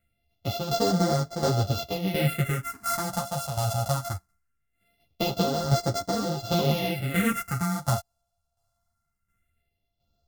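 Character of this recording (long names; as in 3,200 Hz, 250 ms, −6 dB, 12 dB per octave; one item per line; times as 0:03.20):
a buzz of ramps at a fixed pitch in blocks of 64 samples
phaser sweep stages 4, 0.21 Hz, lowest notch 340–2,500 Hz
tremolo saw down 1.4 Hz, depth 65%
a shimmering, thickened sound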